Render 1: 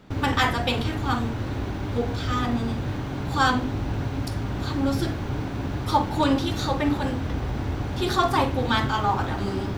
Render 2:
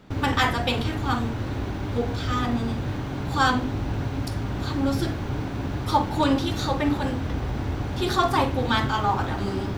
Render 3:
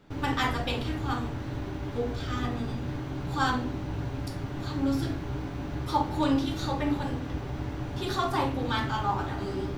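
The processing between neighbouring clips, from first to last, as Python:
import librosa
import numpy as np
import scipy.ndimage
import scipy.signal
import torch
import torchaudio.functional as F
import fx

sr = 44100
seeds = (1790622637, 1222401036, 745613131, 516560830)

y1 = x
y2 = fx.room_shoebox(y1, sr, seeds[0], volume_m3=39.0, walls='mixed', distance_m=0.37)
y2 = F.gain(torch.from_numpy(y2), -7.5).numpy()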